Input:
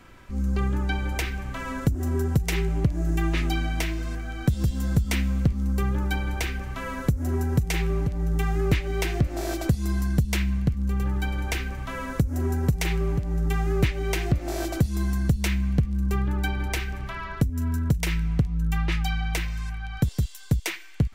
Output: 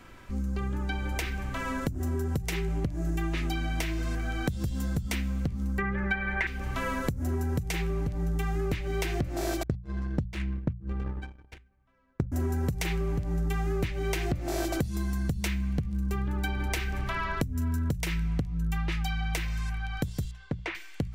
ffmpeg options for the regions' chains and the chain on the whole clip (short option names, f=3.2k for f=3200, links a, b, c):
-filter_complex "[0:a]asettb=1/sr,asplit=3[a][b][c];[a]atrim=end=5.784[d];[b]atrim=start=5.78:end=6.47,asetpts=PTS-STARTPTS,afade=t=in:d=0.004:c=qsin,afade=t=out:st=0.686:d=0.004:c=qsin,lowpass=f=1.9k:t=q:w=5.9,aemphasis=mode=production:type=50fm,aecho=1:1:5.2:0.88,atrim=end_sample=30429[e];[c]atrim=start=6.466[f];[d][e]acrossfade=d=0.004:c1=hsin:c2=qsin[g];[g][f]acrossfade=d=0.004:c1=qsin:c2=hsin,asettb=1/sr,asplit=3[h][i][j];[h]atrim=end=9.634[k];[i]atrim=start=9.63:end=12.32,asetpts=PTS-STARTPTS,afade=t=in:d=0.004:c=qsin,afade=t=out:st=2.686:d=0.004:c=qsin,highshelf=f=7k:g=-7.5,adynamicsmooth=sensitivity=7:basefreq=2.2k,agate=range=-44dB:threshold=-23dB:ratio=16:release=100:detection=peak[l];[j]atrim=start=12.316[m];[k][l]acrossfade=d=0.004:c1=hsin:c2=qsin[n];[n][m]acrossfade=d=0.004:c1=qsin:c2=hsin,asettb=1/sr,asplit=3[o][p][q];[o]atrim=end=20.314[r];[p]atrim=start=20.31:end=20.75,asetpts=PTS-STARTPTS,afade=t=in:d=0.004:c=qsin,afade=t=out:st=0.436:d=0.004:c=qsin,lowpass=2.1k,lowshelf=f=140:g=-11[s];[q]atrim=start=20.746[t];[r][s]acrossfade=d=0.004:c1=hsin:c2=qsin[u];[u][t]acrossfade=d=0.004:c1=qsin:c2=hsin,dynaudnorm=f=360:g=17:m=11.5dB,bandreject=f=60:t=h:w=6,bandreject=f=120:t=h:w=6,bandreject=f=180:t=h:w=6,acompressor=threshold=-27dB:ratio=6"